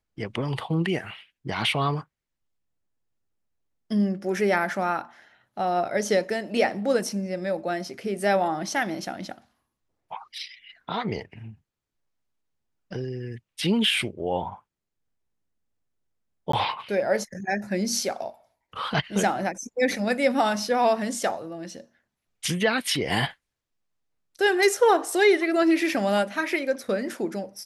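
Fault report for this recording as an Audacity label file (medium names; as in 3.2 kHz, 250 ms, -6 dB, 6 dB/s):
16.520000	16.530000	dropout 14 ms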